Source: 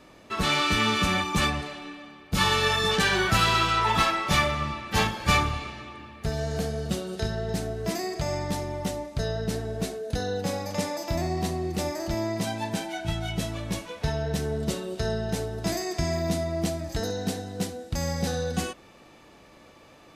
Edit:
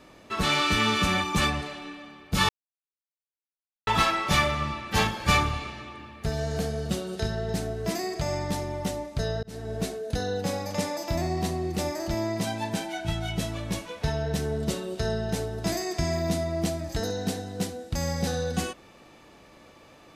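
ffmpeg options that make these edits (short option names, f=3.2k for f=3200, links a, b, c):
-filter_complex "[0:a]asplit=4[a][b][c][d];[a]atrim=end=2.49,asetpts=PTS-STARTPTS,afade=t=out:st=2.486:d=0.004:c=hsin[e];[b]atrim=start=2.49:end=3.87,asetpts=PTS-STARTPTS,volume=0[f];[c]atrim=start=3.87:end=9.43,asetpts=PTS-STARTPTS,afade=t=in:d=0.004:c=hsin,afade=t=out:st=5.556:d=0.004:c=hsin[g];[d]atrim=start=9.43,asetpts=PTS-STARTPTS,afade=t=in:d=0.31[h];[e][f][g][h]concat=n=4:v=0:a=1"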